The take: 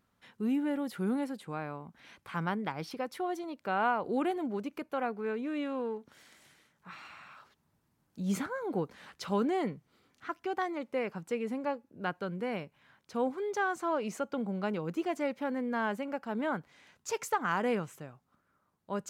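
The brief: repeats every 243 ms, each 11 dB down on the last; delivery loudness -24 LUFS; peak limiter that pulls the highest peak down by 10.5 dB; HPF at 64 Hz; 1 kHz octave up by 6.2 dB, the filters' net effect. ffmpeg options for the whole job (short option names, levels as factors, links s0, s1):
-af "highpass=64,equalizer=f=1000:t=o:g=8,alimiter=limit=0.0794:level=0:latency=1,aecho=1:1:243|486|729:0.282|0.0789|0.0221,volume=3.16"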